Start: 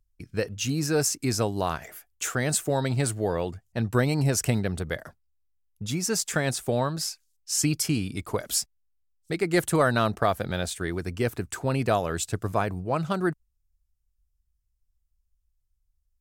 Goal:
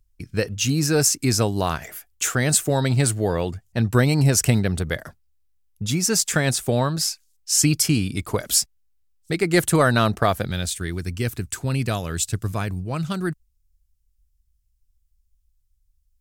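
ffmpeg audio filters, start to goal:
-af "asetnsamples=n=441:p=0,asendcmd='10.45 equalizer g -13.5',equalizer=f=690:t=o:w=2.7:g=-4.5,volume=2.37"

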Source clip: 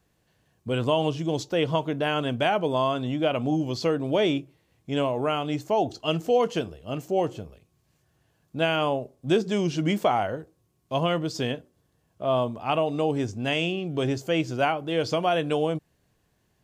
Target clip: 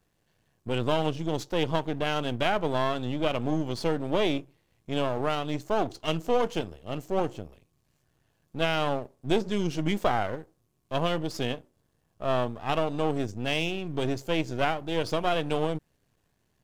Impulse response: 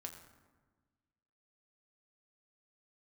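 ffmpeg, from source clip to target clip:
-af "aeval=exprs='if(lt(val(0),0),0.251*val(0),val(0))':c=same"

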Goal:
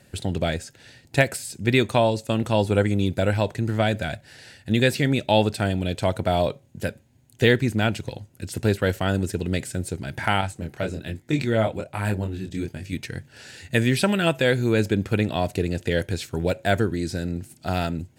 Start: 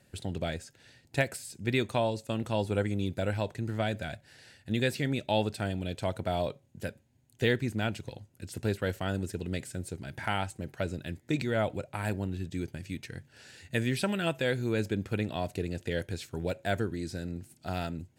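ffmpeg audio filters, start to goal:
-filter_complex "[0:a]asettb=1/sr,asplit=3[s0][s1][s2];[s0]atrim=end=10.414[s3];[s1]atrim=start=10.41:end=12.93,asetpts=PTS-STARTPTS,afade=t=in:d=0.004:c=qsin,afade=t=out:st=2.516:d=0.004:c=qsin,flanger=delay=19.5:depth=7.8:speed=1.2[s4];[s2]atrim=start=12.926[s5];[s3][s4]acrossfade=d=0.004:c1=hsin:c2=qsin[s6];[s6][s5]acrossfade=d=0.004:c1=qsin:c2=hsin,volume=2.82"

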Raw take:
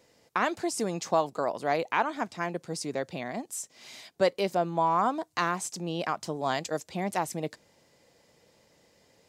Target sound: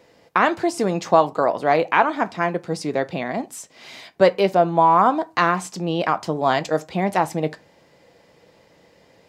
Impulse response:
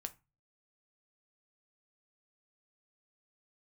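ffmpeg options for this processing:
-filter_complex "[0:a]asplit=2[s0][s1];[s1]highshelf=f=4400:g=-7.5[s2];[1:a]atrim=start_sample=2205,lowpass=5800,lowshelf=f=220:g=-4.5[s3];[s2][s3]afir=irnorm=-1:irlink=0,volume=2.66[s4];[s0][s4]amix=inputs=2:normalize=0,volume=1.19"

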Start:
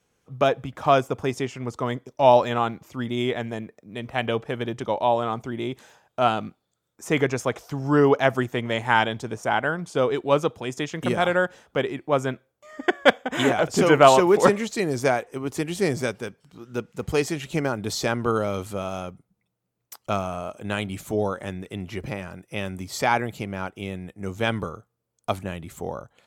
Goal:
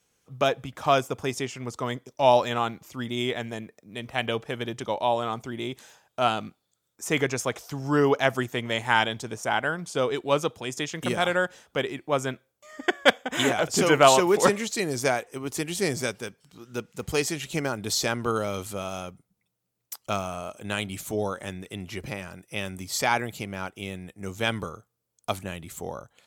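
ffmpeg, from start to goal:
-af "highshelf=f=2600:g=9.5,volume=0.631"

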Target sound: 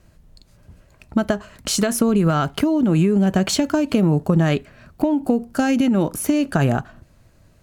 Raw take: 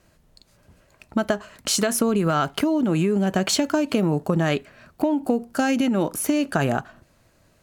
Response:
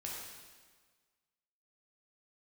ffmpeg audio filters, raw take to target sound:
-af "lowshelf=f=180:g=11.5"

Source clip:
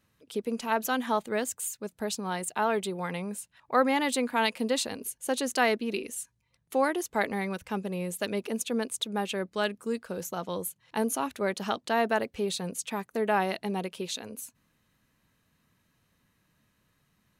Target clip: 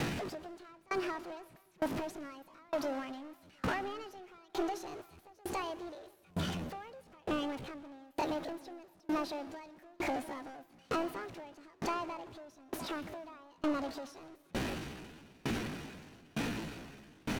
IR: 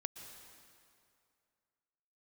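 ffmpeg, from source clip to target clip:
-filter_complex "[0:a]aeval=exprs='val(0)+0.5*0.0282*sgn(val(0))':c=same,highshelf=f=7500:g=4,acompressor=threshold=0.0224:ratio=16,asoftclip=type=tanh:threshold=0.02,asetrate=66075,aresample=44100,atempo=0.66742,aemphasis=mode=reproduction:type=75fm,asplit=2[s0][s1];[s1]adelay=699.7,volume=0.251,highshelf=f=4000:g=-15.7[s2];[s0][s2]amix=inputs=2:normalize=0,asplit=2[s3][s4];[1:a]atrim=start_sample=2205[s5];[s4][s5]afir=irnorm=-1:irlink=0,volume=1.26[s6];[s3][s6]amix=inputs=2:normalize=0,aeval=exprs='val(0)*pow(10,-31*if(lt(mod(1.1*n/s,1),2*abs(1.1)/1000),1-mod(1.1*n/s,1)/(2*abs(1.1)/1000),(mod(1.1*n/s,1)-2*abs(1.1)/1000)/(1-2*abs(1.1)/1000))/20)':c=same,volume=1.33"

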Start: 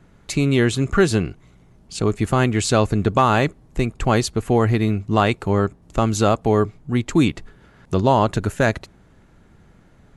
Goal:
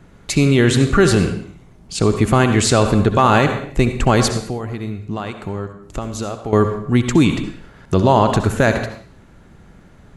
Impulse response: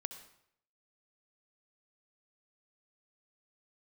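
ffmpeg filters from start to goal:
-filter_complex "[0:a]asettb=1/sr,asplit=3[s0][s1][s2];[s0]atrim=end=4.354[s3];[s1]atrim=start=4.35:end=6.53,asetpts=PTS-STARTPTS,afade=t=in:d=0.004:c=qsin,afade=t=out:st=2.176:d=0.004:c=qsin,acompressor=threshold=0.0355:ratio=6[s4];[s2]atrim=start=6.526[s5];[s3][s4]acrossfade=d=0.004:c1=hsin:c2=qsin[s6];[s6][s5]acrossfade=d=0.004:c1=qsin:c2=hsin[s7];[1:a]atrim=start_sample=2205,afade=t=out:st=0.39:d=0.01,atrim=end_sample=17640[s8];[s7][s8]afir=irnorm=-1:irlink=0,alimiter=level_in=3.16:limit=0.891:release=50:level=0:latency=1,volume=0.794"

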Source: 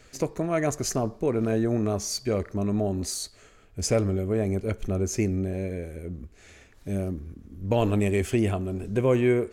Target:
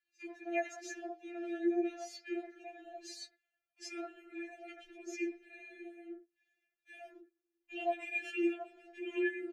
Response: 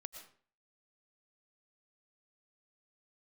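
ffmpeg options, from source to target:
-filter_complex "[0:a]asplit=3[s0][s1][s2];[s0]bandpass=f=530:t=q:w=8,volume=1[s3];[s1]bandpass=f=1840:t=q:w=8,volume=0.501[s4];[s2]bandpass=f=2480:t=q:w=8,volume=0.355[s5];[s3][s4][s5]amix=inputs=3:normalize=0,highshelf=f=2300:g=7.5,agate=range=0.0794:threshold=0.00251:ratio=16:detection=peak,acrossover=split=370|1500[s6][s7][s8];[s6]adelay=30[s9];[s7]adelay=80[s10];[s9][s10][s8]amix=inputs=3:normalize=0,flanger=delay=3.6:depth=5.2:regen=34:speed=0.24:shape=sinusoidal,equalizer=f=100:t=o:w=0.67:g=9,equalizer=f=250:t=o:w=0.67:g=4,equalizer=f=1600:t=o:w=0.67:g=3,equalizer=f=10000:t=o:w=0.67:g=-7,afftfilt=real='re*4*eq(mod(b,16),0)':imag='im*4*eq(mod(b,16),0)':win_size=2048:overlap=0.75,volume=2.99"

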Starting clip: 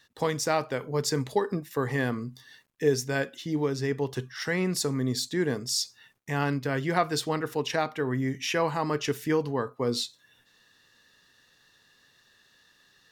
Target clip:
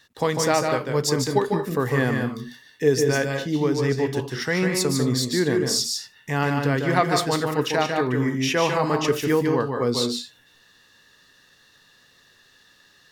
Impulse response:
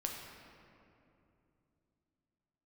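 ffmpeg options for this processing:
-filter_complex "[0:a]asplit=2[s0][s1];[1:a]atrim=start_sample=2205,afade=t=out:st=0.14:d=0.01,atrim=end_sample=6615,adelay=149[s2];[s1][s2]afir=irnorm=-1:irlink=0,volume=0.708[s3];[s0][s3]amix=inputs=2:normalize=0,volume=1.68"

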